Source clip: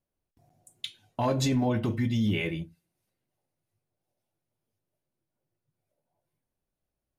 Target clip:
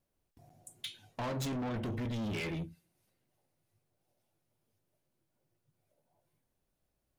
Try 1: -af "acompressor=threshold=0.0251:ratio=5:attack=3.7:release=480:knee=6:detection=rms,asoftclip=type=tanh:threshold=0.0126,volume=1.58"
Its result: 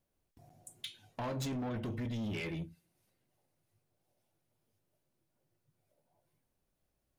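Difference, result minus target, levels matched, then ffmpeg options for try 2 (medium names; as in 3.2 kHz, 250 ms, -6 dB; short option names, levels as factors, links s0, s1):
compression: peak gain reduction +5 dB
-af "acompressor=threshold=0.0531:ratio=5:attack=3.7:release=480:knee=6:detection=rms,asoftclip=type=tanh:threshold=0.0126,volume=1.58"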